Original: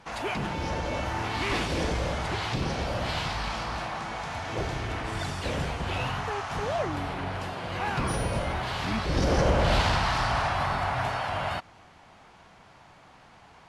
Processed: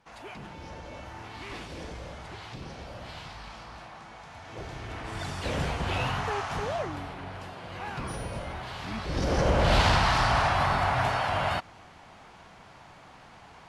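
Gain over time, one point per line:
4.32 s -12 dB
5.66 s +1 dB
6.43 s +1 dB
7.15 s -7 dB
8.84 s -7 dB
9.87 s +2.5 dB

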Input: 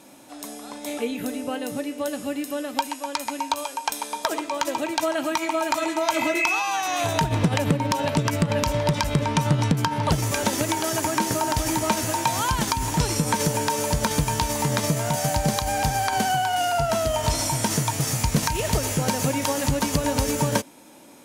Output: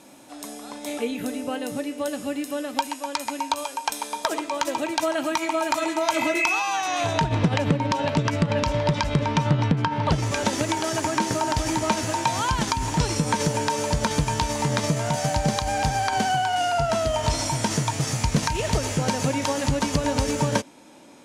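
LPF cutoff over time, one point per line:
6.44 s 12000 Hz
7.23 s 5400 Hz
9.32 s 5400 Hz
9.77 s 3100 Hz
10.47 s 7300 Hz

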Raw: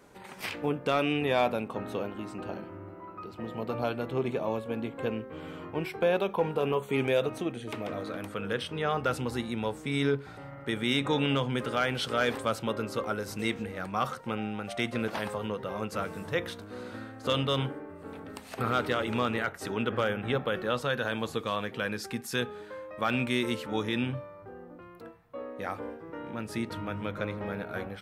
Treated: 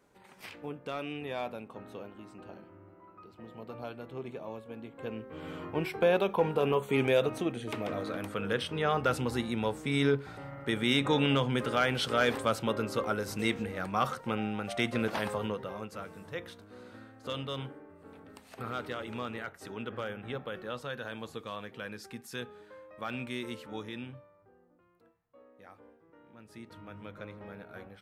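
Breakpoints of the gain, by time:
4.88 s -10.5 dB
5.52 s +0.5 dB
15.44 s +0.5 dB
15.95 s -9 dB
23.74 s -9 dB
24.68 s -18.5 dB
26.28 s -18.5 dB
26.99 s -11 dB

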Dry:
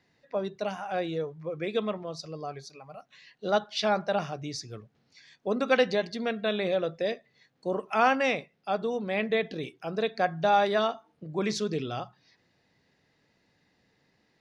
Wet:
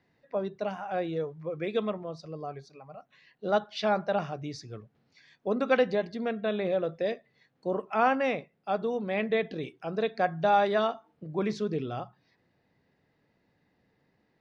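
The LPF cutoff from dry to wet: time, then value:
LPF 6 dB/oct
1900 Hz
from 1.16 s 3200 Hz
from 1.9 s 1400 Hz
from 3.5 s 2300 Hz
from 5.79 s 1400 Hz
from 6.89 s 2400 Hz
from 7.82 s 1500 Hz
from 8.69 s 2700 Hz
from 11.43 s 1400 Hz

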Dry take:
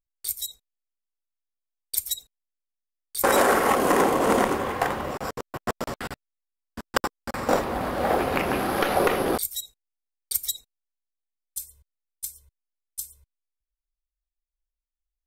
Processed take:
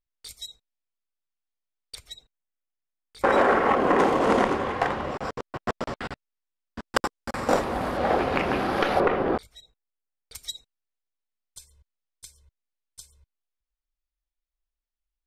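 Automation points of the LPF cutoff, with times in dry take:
4600 Hz
from 1.95 s 2600 Hz
from 3.99 s 4800 Hz
from 6.88 s 9700 Hz
from 7.97 s 5500 Hz
from 9 s 2000 Hz
from 10.35 s 4800 Hz

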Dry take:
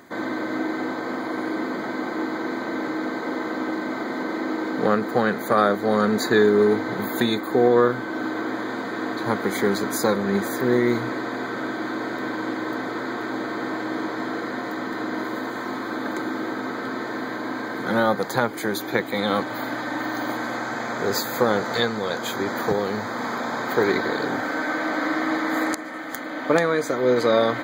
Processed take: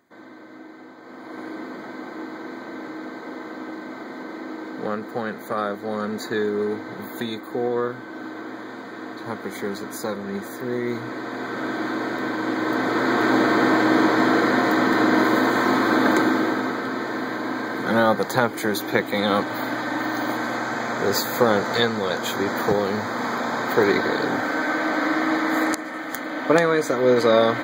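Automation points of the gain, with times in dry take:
0.97 s -16 dB
1.4 s -7 dB
10.73 s -7 dB
11.77 s +2 dB
12.39 s +2 dB
13.29 s +10 dB
16.13 s +10 dB
16.85 s +2 dB

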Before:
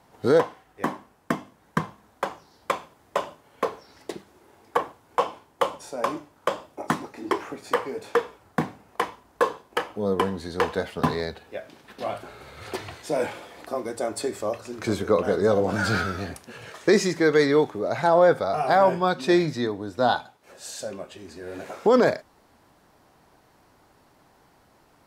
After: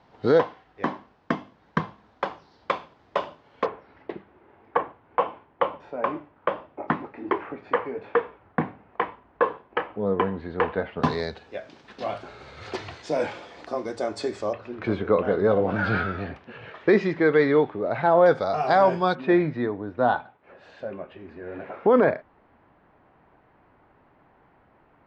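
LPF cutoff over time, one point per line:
LPF 24 dB/oct
4600 Hz
from 3.66 s 2600 Hz
from 11.03 s 6100 Hz
from 14.53 s 3100 Hz
from 18.26 s 5800 Hz
from 19.15 s 2500 Hz

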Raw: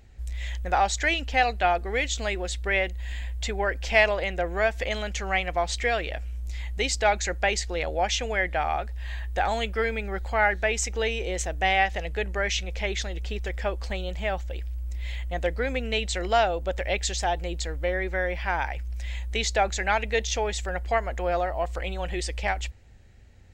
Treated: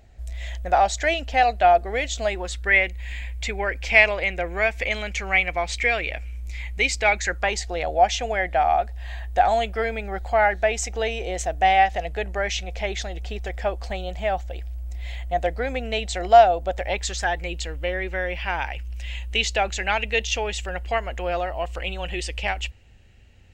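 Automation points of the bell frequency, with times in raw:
bell +11.5 dB 0.34 oct
2.27 s 660 Hz
2.8 s 2300 Hz
7.15 s 2300 Hz
7.64 s 710 Hz
16.81 s 710 Hz
17.55 s 2800 Hz

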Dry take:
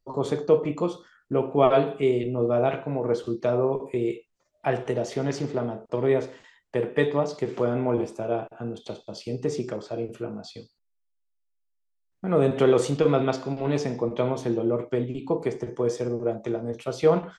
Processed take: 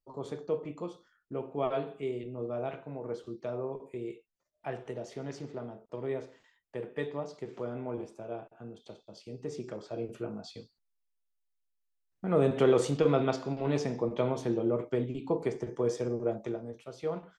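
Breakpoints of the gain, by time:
9.35 s -12.5 dB
10.13 s -4.5 dB
16.39 s -4.5 dB
16.86 s -14.5 dB

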